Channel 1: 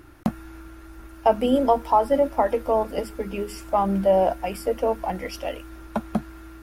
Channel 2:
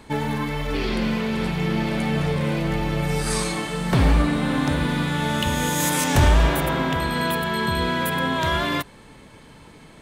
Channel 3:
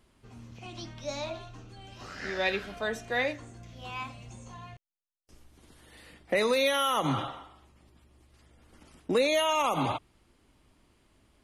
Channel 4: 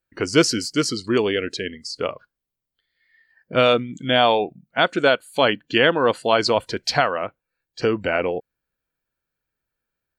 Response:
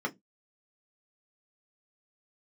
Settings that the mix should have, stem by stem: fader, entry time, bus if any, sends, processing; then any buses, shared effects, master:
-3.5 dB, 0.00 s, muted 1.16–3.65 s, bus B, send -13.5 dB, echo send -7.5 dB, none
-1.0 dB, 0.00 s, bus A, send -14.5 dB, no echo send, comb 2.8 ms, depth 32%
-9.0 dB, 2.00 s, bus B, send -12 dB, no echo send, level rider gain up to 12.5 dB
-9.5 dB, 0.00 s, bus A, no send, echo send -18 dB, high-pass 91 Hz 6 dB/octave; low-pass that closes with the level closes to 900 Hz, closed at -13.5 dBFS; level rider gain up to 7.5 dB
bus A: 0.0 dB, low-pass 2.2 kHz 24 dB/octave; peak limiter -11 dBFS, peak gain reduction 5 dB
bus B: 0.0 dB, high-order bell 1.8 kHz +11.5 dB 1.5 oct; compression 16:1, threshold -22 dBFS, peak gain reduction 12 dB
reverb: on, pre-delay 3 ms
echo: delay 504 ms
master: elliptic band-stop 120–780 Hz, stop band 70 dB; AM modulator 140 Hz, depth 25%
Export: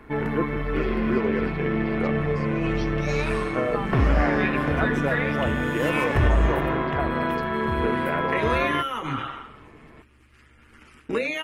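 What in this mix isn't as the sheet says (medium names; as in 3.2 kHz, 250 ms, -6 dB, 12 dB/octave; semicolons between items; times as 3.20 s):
stem 1 -3.5 dB -> -10.0 dB; master: missing elliptic band-stop 120–780 Hz, stop band 70 dB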